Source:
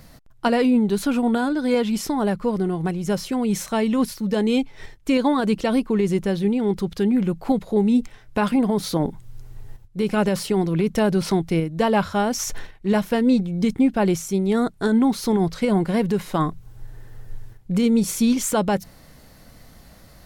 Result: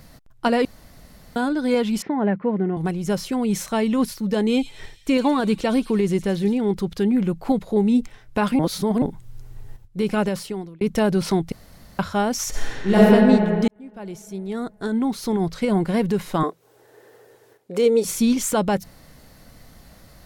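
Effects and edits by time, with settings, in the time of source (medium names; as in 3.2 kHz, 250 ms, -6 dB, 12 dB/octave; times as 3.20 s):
0.65–1.36 s: room tone
2.02–2.77 s: cabinet simulation 170–2400 Hz, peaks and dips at 200 Hz +4 dB, 1.2 kHz -7 dB, 1.9 kHz +4 dB
4.50–6.58 s: feedback echo behind a high-pass 109 ms, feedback 59%, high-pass 4.1 kHz, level -6.5 dB
8.59–9.02 s: reverse
10.11–10.81 s: fade out
11.52–11.99 s: room tone
12.49–12.97 s: reverb throw, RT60 2.9 s, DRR -9 dB
13.68–15.88 s: fade in
16.43–18.05 s: resonant high-pass 440 Hz, resonance Q 3.1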